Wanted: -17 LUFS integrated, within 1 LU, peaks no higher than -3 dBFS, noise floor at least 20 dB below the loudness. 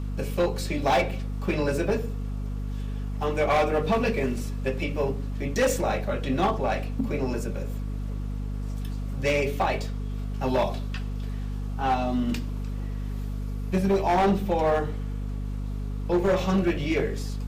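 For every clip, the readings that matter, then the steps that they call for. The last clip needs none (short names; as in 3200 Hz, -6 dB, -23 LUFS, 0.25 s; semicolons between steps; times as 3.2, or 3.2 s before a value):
clipped 1.7%; flat tops at -17.5 dBFS; hum 50 Hz; harmonics up to 250 Hz; hum level -28 dBFS; loudness -27.5 LUFS; peak -17.5 dBFS; loudness target -17.0 LUFS
-> clip repair -17.5 dBFS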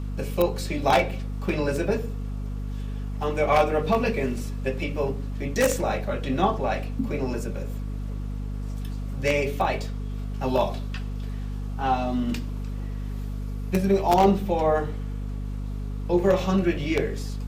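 clipped 0.0%; hum 50 Hz; harmonics up to 250 Hz; hum level -28 dBFS
-> notches 50/100/150/200/250 Hz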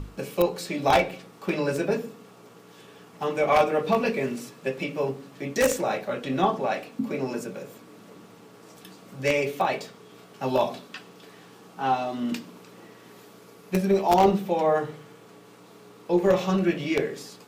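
hum none; loudness -26.0 LUFS; peak -7.5 dBFS; loudness target -17.0 LUFS
-> gain +9 dB; limiter -3 dBFS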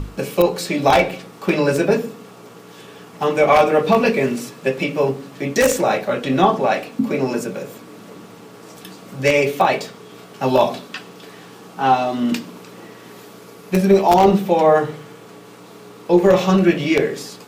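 loudness -17.5 LUFS; peak -3.0 dBFS; noise floor -42 dBFS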